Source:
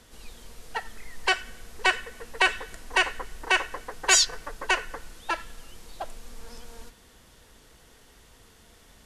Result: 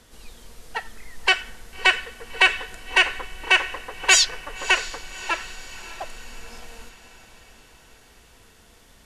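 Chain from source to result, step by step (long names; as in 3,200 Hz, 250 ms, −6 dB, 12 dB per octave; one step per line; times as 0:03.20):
dynamic equaliser 2,600 Hz, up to +7 dB, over −38 dBFS, Q 1.3
feedback delay with all-pass diffusion 606 ms, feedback 54%, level −15.5 dB
level +1 dB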